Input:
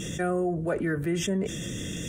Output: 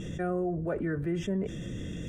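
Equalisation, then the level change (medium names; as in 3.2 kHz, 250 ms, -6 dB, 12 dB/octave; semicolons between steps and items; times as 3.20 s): low-pass 1.5 kHz 6 dB/octave; bass shelf 68 Hz +8 dB; -3.5 dB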